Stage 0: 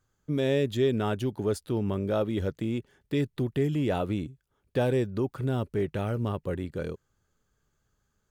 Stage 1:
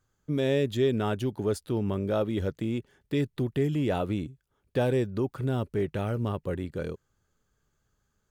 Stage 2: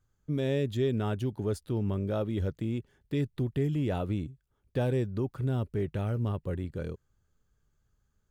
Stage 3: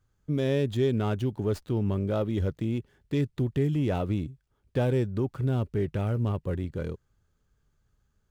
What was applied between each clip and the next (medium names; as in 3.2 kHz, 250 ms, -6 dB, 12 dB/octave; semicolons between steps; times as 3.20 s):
no audible change
bass shelf 140 Hz +10.5 dB; trim -5.5 dB
sliding maximum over 3 samples; trim +3 dB